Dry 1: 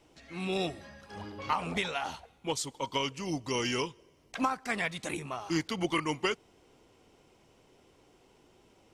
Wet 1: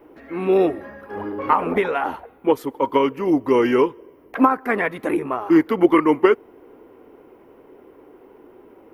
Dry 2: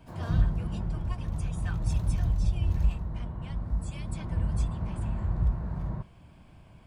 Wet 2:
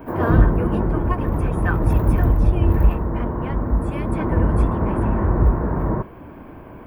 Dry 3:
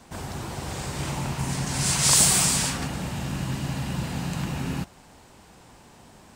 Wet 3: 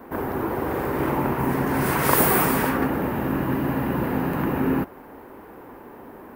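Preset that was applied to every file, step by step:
EQ curve 170 Hz 0 dB, 270 Hz +13 dB, 440 Hz +15 dB, 690 Hz +7 dB, 1000 Hz +10 dB, 1800 Hz +7 dB, 4000 Hz -13 dB, 7700 Hz -19 dB, 14000 Hz +13 dB; normalise peaks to -1.5 dBFS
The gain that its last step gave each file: +4.0, +9.5, 0.0 dB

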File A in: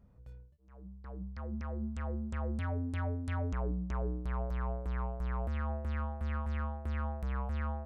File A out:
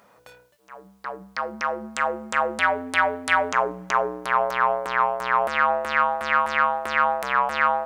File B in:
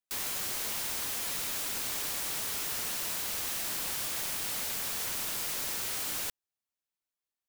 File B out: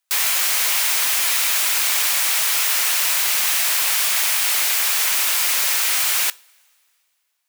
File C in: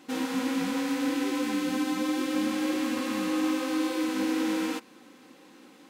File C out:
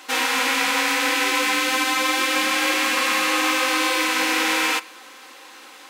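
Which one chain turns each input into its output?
HPF 830 Hz 12 dB/oct; dynamic EQ 2300 Hz, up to +4 dB, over -50 dBFS, Q 2.1; two-slope reverb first 0.31 s, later 2.5 s, from -21 dB, DRR 18.5 dB; normalise peaks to -6 dBFS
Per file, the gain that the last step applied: +25.0, +15.0, +15.0 dB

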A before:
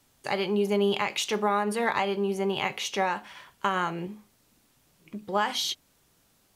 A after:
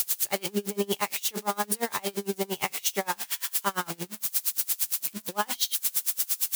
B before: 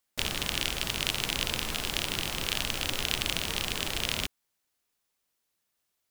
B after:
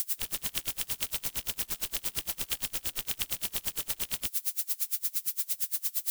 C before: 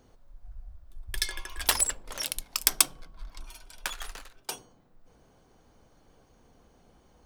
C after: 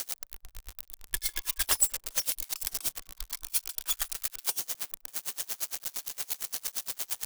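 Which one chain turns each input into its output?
switching spikes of -18.5 dBFS; dB-linear tremolo 8.7 Hz, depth 30 dB; normalise peaks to -12 dBFS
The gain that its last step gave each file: +2.0, -4.5, +1.0 dB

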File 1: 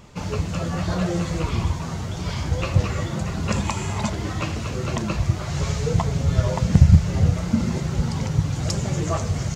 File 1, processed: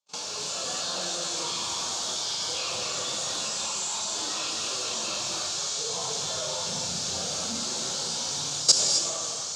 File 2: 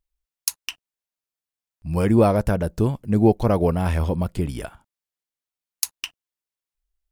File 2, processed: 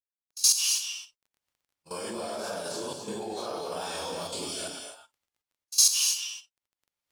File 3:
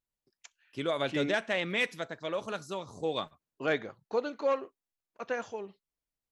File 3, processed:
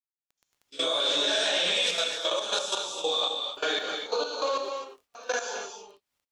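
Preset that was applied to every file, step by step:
phase scrambler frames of 0.2 s; HPF 520 Hz 12 dB/oct; notch 2000 Hz, Q 5.5; gate -49 dBFS, range -38 dB; band shelf 5500 Hz +14 dB; level quantiser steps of 18 dB; transient shaper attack +2 dB, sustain +8 dB; AGC gain up to 3 dB; crackle 13/s -50 dBFS; non-linear reverb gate 0.29 s rising, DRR 4.5 dB; match loudness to -27 LUFS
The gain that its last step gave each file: +0.5, -3.5, +5.5 dB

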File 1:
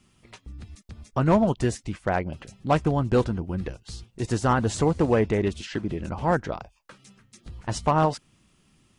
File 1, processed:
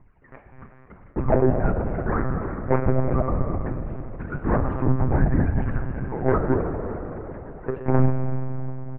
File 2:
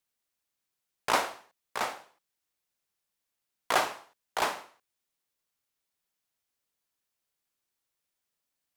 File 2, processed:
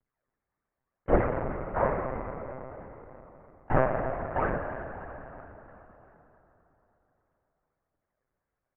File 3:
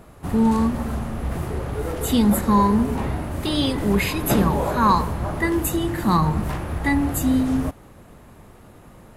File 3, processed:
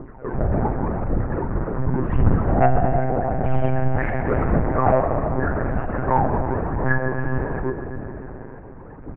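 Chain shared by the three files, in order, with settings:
bell 610 Hz +4.5 dB 0.34 oct; in parallel at -1.5 dB: compressor 6:1, threshold -32 dBFS; on the sum: phaser 0.88 Hz, delay 3.1 ms, feedback 77%; vibrato 4.2 Hz 11 cents; hard clip -11.5 dBFS; air absorption 410 m; doubler 33 ms -11 dB; on a send: feedback echo 0.328 s, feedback 55%, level -16.5 dB; on the sum: FDN reverb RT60 3.8 s, high-frequency decay 0.8×, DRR 3 dB; mistuned SSB -290 Hz 170–2200 Hz; monotone LPC vocoder at 8 kHz 130 Hz; gain -1 dB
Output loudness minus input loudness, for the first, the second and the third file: 0.0, +1.0, -1.0 LU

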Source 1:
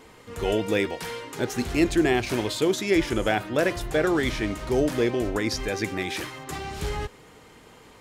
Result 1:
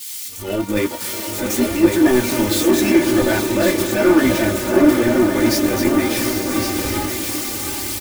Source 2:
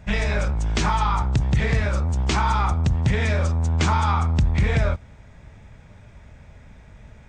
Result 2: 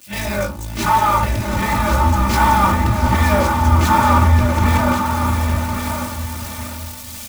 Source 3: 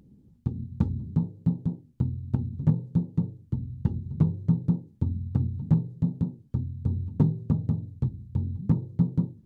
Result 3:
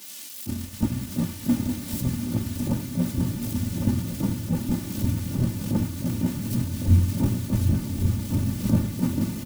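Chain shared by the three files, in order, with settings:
switching spikes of -20.5 dBFS; upward compressor, threshold -41 dBFS; HPF 95 Hz 24 dB/oct; chorus 0.94 Hz, delay 15.5 ms, depth 5.4 ms; transient shaper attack -11 dB, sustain -7 dB; diffused feedback echo 0.75 s, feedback 51%, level -5 dB; sample leveller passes 2; low shelf 340 Hz +10.5 dB; echo 1.107 s -5.5 dB; dynamic EQ 1100 Hz, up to +5 dB, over -36 dBFS, Q 1.3; comb 3.4 ms, depth 82%; three-band expander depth 70%; gain -2.5 dB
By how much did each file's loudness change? +8.5, +5.5, +2.5 LU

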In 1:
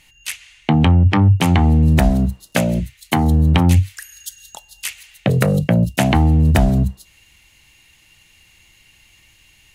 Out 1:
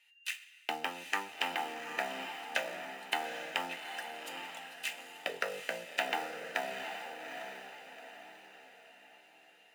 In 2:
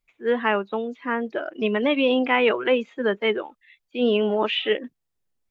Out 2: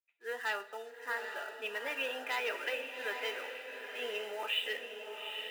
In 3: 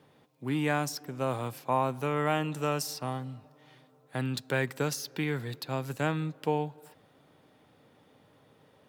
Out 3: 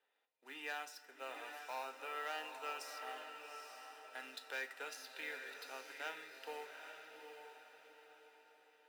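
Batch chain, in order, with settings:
HPF 190 Hz 12 dB/oct; treble ducked by the level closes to 2500 Hz, closed at -15.5 dBFS; three-band isolator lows -21 dB, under 290 Hz, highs -22 dB, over 3000 Hz; sample leveller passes 1; differentiator; notch comb 1100 Hz; diffused feedback echo 0.819 s, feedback 42%, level -6 dB; two-slope reverb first 0.29 s, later 2.2 s, from -18 dB, DRR 7 dB; gain +1 dB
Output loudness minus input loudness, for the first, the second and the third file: -22.0, -14.0, -15.0 LU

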